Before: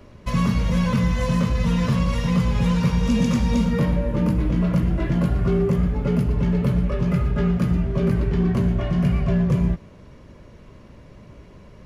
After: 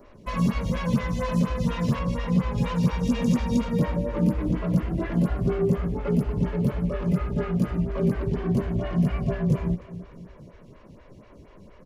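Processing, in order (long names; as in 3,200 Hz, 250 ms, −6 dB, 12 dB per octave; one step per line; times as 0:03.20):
0:01.99–0:02.58: high-shelf EQ 3,800 Hz −8 dB
repeating echo 297 ms, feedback 51%, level −17 dB
phaser with staggered stages 4.2 Hz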